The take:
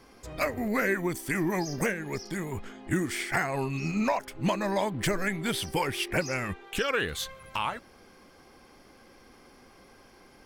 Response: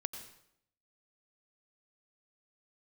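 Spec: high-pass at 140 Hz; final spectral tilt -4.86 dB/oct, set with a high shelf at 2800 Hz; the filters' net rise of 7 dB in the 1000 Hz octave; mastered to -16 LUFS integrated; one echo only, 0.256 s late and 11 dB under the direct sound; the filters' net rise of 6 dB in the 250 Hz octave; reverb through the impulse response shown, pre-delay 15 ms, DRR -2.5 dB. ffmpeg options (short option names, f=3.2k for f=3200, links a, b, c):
-filter_complex "[0:a]highpass=140,equalizer=f=250:t=o:g=8.5,equalizer=f=1k:t=o:g=8.5,highshelf=f=2.8k:g=-4,aecho=1:1:256:0.282,asplit=2[a][b];[1:a]atrim=start_sample=2205,adelay=15[c];[b][c]afir=irnorm=-1:irlink=0,volume=3dB[d];[a][d]amix=inputs=2:normalize=0,volume=5dB"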